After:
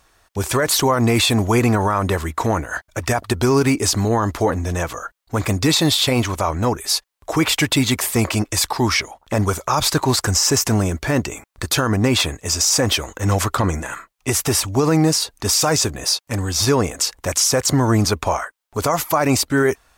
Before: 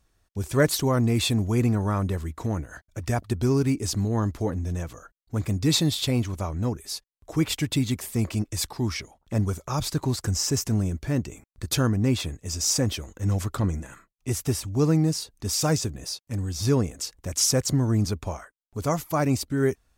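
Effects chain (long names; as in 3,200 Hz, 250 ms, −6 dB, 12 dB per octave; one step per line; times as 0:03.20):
drawn EQ curve 190 Hz 0 dB, 940 Hz +14 dB, 5,900 Hz +9 dB
brickwall limiter −12.5 dBFS, peak gain reduction 15 dB
level +5 dB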